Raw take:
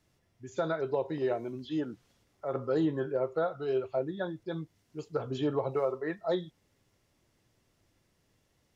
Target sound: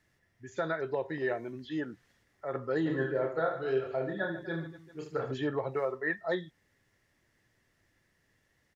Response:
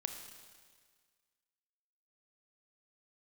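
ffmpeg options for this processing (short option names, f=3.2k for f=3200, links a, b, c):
-filter_complex "[0:a]equalizer=f=1.8k:w=3.2:g=14,asplit=3[a][b][c];[a]afade=t=out:st=2.85:d=0.02[d];[b]aecho=1:1:30|75|142.5|243.8|395.6:0.631|0.398|0.251|0.158|0.1,afade=t=in:st=2.85:d=0.02,afade=t=out:st=5.33:d=0.02[e];[c]afade=t=in:st=5.33:d=0.02[f];[d][e][f]amix=inputs=3:normalize=0,volume=-2.5dB"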